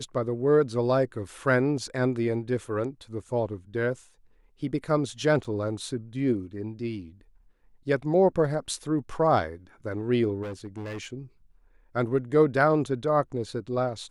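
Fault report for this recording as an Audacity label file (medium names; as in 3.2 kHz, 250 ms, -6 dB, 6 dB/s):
5.440000	5.450000	dropout 6.5 ms
10.420000	11.060000	clipped -32 dBFS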